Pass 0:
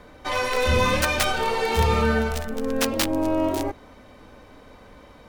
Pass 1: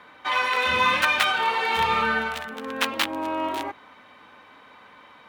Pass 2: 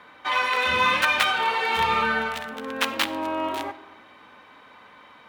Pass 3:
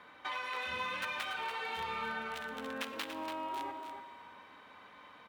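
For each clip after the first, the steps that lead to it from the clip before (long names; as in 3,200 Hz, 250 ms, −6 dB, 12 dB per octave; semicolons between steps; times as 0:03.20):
high-pass filter 150 Hz 12 dB per octave; flat-topped bell 1,800 Hz +12 dB 2.5 octaves; level −8 dB
convolution reverb RT60 1.3 s, pre-delay 10 ms, DRR 14 dB
tuned comb filter 95 Hz, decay 1.9 s, mix 50%; downward compressor 4 to 1, threshold −37 dBFS, peak gain reduction 13 dB; single-tap delay 286 ms −8 dB; level −1 dB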